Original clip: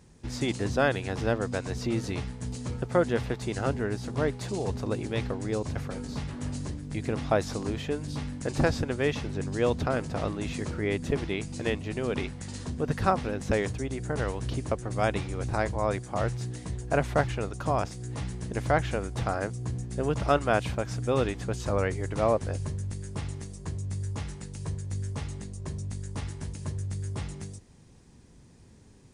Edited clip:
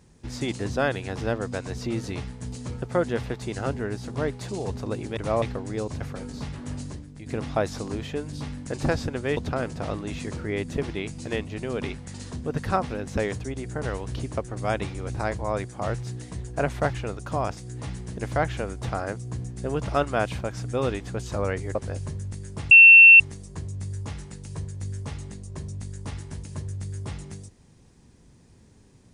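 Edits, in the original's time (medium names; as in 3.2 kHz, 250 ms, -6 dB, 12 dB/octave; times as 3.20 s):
6.53–7.01 s: fade out, to -11 dB
9.12–9.71 s: delete
22.09–22.34 s: move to 5.17 s
23.30 s: add tone 2.7 kHz -6.5 dBFS 0.49 s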